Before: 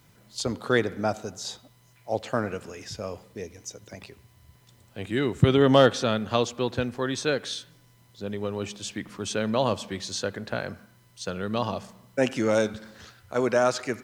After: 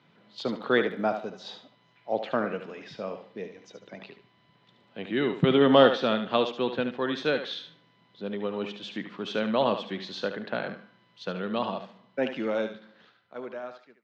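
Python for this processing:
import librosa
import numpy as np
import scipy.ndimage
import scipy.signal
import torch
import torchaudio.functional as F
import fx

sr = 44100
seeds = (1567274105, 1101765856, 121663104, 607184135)

y = fx.fade_out_tail(x, sr, length_s=2.81)
y = scipy.signal.sosfilt(scipy.signal.cheby1(3, 1.0, [170.0, 3600.0], 'bandpass', fs=sr, output='sos'), y)
y = fx.echo_thinned(y, sr, ms=73, feedback_pct=23, hz=420.0, wet_db=-8)
y = fx.dmg_crackle(y, sr, seeds[0], per_s=26.0, level_db=-51.0, at=(0.46, 1.2), fade=0.02)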